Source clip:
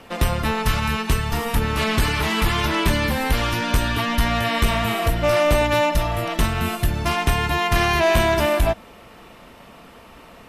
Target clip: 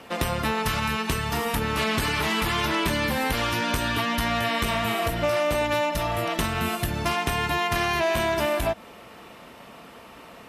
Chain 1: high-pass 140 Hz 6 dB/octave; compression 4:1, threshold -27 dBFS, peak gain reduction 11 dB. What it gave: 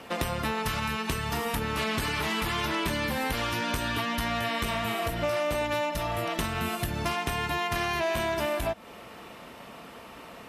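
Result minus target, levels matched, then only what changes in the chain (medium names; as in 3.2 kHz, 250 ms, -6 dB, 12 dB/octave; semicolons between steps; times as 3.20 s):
compression: peak gain reduction +4.5 dB
change: compression 4:1, threshold -21 dBFS, peak gain reduction 6.5 dB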